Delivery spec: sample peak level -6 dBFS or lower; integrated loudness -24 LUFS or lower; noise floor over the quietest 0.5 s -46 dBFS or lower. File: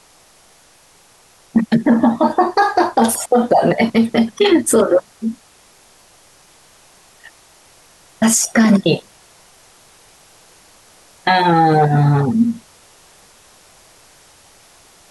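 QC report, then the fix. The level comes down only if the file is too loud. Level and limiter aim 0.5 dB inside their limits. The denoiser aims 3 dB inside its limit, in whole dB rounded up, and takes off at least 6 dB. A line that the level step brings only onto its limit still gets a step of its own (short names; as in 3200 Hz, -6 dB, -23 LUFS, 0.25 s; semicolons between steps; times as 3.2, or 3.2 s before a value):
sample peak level -4.0 dBFS: fail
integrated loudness -15.0 LUFS: fail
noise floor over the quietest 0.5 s -50 dBFS: OK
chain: gain -9.5 dB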